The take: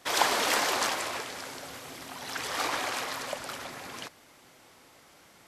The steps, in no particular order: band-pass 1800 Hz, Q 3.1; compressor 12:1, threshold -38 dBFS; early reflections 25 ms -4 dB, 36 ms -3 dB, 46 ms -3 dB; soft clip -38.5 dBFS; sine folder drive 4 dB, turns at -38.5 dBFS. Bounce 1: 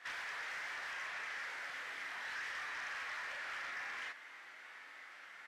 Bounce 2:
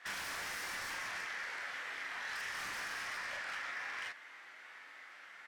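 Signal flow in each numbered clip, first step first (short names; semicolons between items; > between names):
soft clip > early reflections > compressor > band-pass > sine folder; band-pass > soft clip > sine folder > early reflections > compressor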